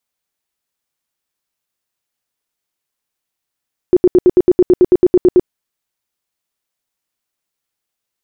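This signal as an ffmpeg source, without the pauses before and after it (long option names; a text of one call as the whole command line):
ffmpeg -f lavfi -i "aevalsrc='0.631*sin(2*PI*361*mod(t,0.11))*lt(mod(t,0.11),13/361)':duration=1.54:sample_rate=44100" out.wav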